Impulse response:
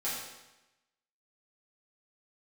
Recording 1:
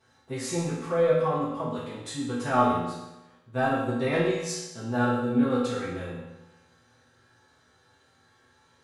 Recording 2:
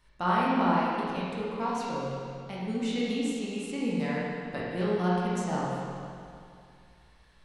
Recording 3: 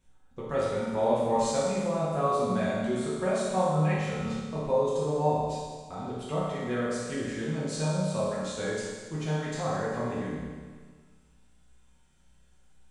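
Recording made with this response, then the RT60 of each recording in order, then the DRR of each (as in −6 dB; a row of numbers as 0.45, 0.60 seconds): 1; 1.0, 2.4, 1.6 seconds; −10.5, −7.0, −9.0 decibels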